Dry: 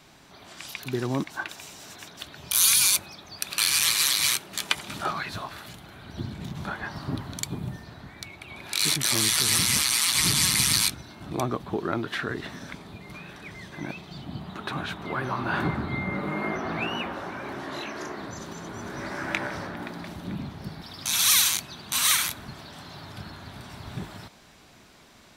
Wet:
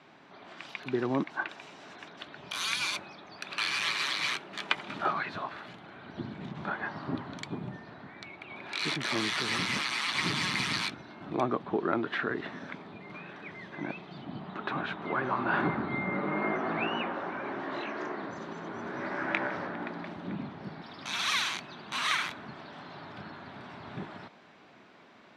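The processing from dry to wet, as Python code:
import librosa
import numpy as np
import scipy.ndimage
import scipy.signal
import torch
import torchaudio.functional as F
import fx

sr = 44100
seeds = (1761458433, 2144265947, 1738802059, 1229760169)

y = fx.bandpass_edges(x, sr, low_hz=200.0, high_hz=2500.0)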